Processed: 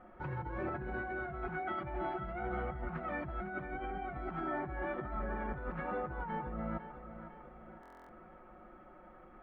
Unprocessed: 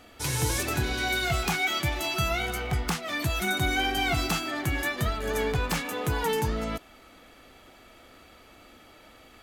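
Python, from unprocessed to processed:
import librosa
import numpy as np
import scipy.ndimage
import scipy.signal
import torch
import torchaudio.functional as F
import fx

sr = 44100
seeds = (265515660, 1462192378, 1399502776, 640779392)

p1 = scipy.signal.sosfilt(scipy.signal.butter(4, 1500.0, 'lowpass', fs=sr, output='sos'), x)
p2 = fx.notch(p1, sr, hz=430.0, q=12.0)
p3 = p2 + 0.86 * np.pad(p2, (int(5.5 * sr / 1000.0), 0))[:len(p2)]
p4 = fx.over_compress(p3, sr, threshold_db=-32.0, ratio=-1.0)
p5 = p4 + fx.echo_feedback(p4, sr, ms=503, feedback_pct=49, wet_db=-11.5, dry=0)
p6 = fx.buffer_glitch(p5, sr, at_s=(7.81,), block=1024, repeats=11)
y = F.gain(torch.from_numpy(p6), -7.5).numpy()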